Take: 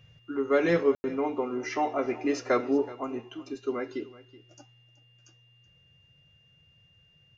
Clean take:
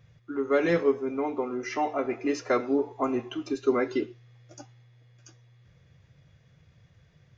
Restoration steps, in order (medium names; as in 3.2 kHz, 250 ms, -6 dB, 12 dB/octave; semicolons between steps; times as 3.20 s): band-stop 2.8 kHz, Q 30; room tone fill 0.95–1.04 s; inverse comb 376 ms -19 dB; trim 0 dB, from 2.92 s +7 dB